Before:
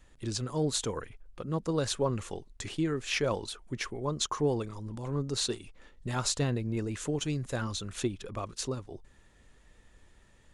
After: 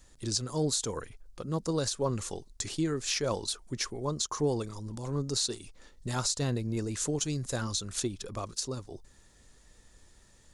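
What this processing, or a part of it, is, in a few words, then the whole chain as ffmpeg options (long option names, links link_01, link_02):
over-bright horn tweeter: -af "highshelf=frequency=3700:width_type=q:width=1.5:gain=7.5,alimiter=limit=-19dB:level=0:latency=1:release=167"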